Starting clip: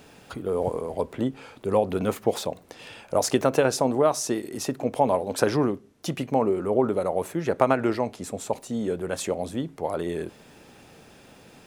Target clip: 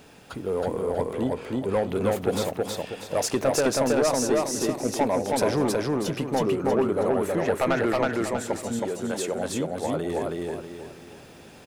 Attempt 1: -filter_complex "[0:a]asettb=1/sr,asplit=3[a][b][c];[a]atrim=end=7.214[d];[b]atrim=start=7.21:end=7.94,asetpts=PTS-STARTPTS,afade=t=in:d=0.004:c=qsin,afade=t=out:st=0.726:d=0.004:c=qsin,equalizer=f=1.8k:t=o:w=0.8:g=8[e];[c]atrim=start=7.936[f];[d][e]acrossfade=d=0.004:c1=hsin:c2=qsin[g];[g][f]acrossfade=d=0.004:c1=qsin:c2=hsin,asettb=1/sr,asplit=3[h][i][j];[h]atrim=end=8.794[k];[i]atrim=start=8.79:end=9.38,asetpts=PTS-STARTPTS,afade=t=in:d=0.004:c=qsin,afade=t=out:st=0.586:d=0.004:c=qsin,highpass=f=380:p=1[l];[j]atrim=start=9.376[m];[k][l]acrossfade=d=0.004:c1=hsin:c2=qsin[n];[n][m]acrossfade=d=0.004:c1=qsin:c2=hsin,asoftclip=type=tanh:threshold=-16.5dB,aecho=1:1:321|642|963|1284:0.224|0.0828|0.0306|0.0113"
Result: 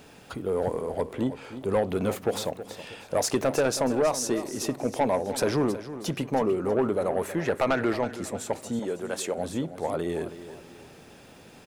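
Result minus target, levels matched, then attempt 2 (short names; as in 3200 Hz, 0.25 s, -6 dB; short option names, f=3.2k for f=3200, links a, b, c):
echo-to-direct -11.5 dB
-filter_complex "[0:a]asettb=1/sr,asplit=3[a][b][c];[a]atrim=end=7.214[d];[b]atrim=start=7.21:end=7.94,asetpts=PTS-STARTPTS,afade=t=in:d=0.004:c=qsin,afade=t=out:st=0.726:d=0.004:c=qsin,equalizer=f=1.8k:t=o:w=0.8:g=8[e];[c]atrim=start=7.936[f];[d][e]acrossfade=d=0.004:c1=hsin:c2=qsin[g];[g][f]acrossfade=d=0.004:c1=qsin:c2=hsin,asettb=1/sr,asplit=3[h][i][j];[h]atrim=end=8.794[k];[i]atrim=start=8.79:end=9.38,asetpts=PTS-STARTPTS,afade=t=in:d=0.004:c=qsin,afade=t=out:st=0.586:d=0.004:c=qsin,highpass=f=380:p=1[l];[j]atrim=start=9.376[m];[k][l]acrossfade=d=0.004:c1=hsin:c2=qsin[n];[n][m]acrossfade=d=0.004:c1=qsin:c2=hsin,asoftclip=type=tanh:threshold=-16.5dB,aecho=1:1:321|642|963|1284|1605:0.841|0.311|0.115|0.0426|0.0158"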